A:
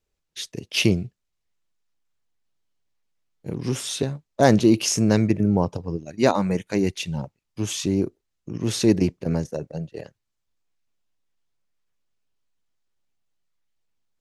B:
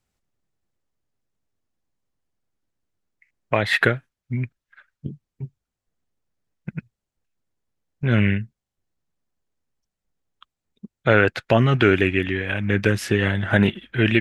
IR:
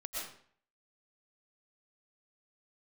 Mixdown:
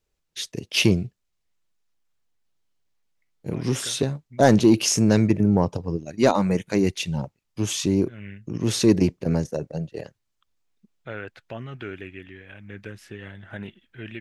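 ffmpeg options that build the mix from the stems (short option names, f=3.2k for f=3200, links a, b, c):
-filter_complex "[0:a]asoftclip=type=tanh:threshold=-5.5dB,volume=1.5dB,asplit=2[a][b];[1:a]volume=-19dB[c];[b]apad=whole_len=626566[d];[c][d]sidechaincompress=threshold=-27dB:ratio=8:attack=7.8:release=263[e];[a][e]amix=inputs=2:normalize=0"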